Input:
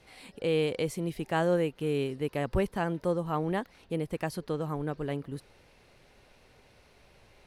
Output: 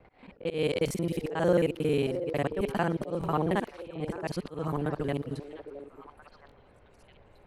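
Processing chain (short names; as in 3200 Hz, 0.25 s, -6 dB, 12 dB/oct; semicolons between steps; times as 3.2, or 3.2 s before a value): local time reversal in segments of 45 ms; auto swell 0.167 s; low-pass opened by the level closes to 1200 Hz, open at -30.5 dBFS; delay with a stepping band-pass 0.666 s, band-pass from 450 Hz, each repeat 1.4 oct, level -9 dB; stuck buffer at 0.86/3.19/6.47, samples 1024, times 1; gain +3 dB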